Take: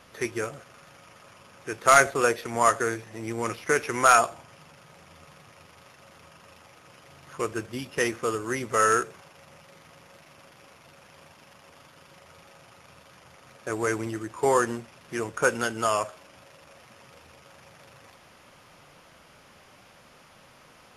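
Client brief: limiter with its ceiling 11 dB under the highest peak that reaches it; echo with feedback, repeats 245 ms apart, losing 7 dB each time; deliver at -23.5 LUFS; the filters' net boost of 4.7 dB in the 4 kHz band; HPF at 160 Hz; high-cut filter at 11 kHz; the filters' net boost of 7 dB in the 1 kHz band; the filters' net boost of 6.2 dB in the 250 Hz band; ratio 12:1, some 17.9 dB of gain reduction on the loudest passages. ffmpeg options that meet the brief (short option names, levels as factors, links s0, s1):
-af "highpass=160,lowpass=11000,equalizer=f=250:t=o:g=8.5,equalizer=f=1000:t=o:g=9,equalizer=f=4000:t=o:g=6,acompressor=threshold=0.0562:ratio=12,alimiter=limit=0.0708:level=0:latency=1,aecho=1:1:245|490|735|980|1225:0.447|0.201|0.0905|0.0407|0.0183,volume=4.47"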